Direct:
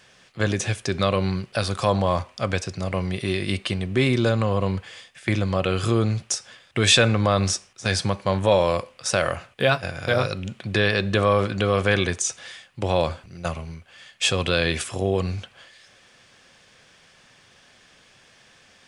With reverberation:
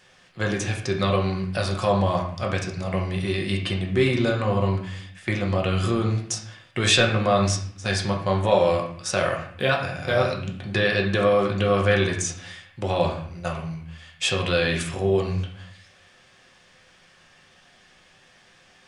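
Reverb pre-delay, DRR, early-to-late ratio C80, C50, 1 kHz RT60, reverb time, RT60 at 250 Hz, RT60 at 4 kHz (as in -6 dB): 5 ms, 0.0 dB, 10.0 dB, 7.0 dB, 0.55 s, 0.60 s, 0.85 s, 0.50 s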